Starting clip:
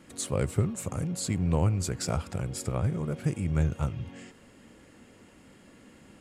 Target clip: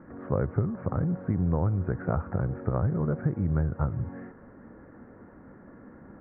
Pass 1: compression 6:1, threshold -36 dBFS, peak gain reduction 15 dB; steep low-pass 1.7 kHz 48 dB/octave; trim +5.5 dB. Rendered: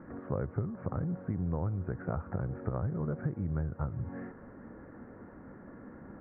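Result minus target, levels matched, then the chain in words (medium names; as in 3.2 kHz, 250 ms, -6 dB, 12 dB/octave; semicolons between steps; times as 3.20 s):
compression: peak gain reduction +7 dB
compression 6:1, threshold -27.5 dBFS, peak gain reduction 8 dB; steep low-pass 1.7 kHz 48 dB/octave; trim +5.5 dB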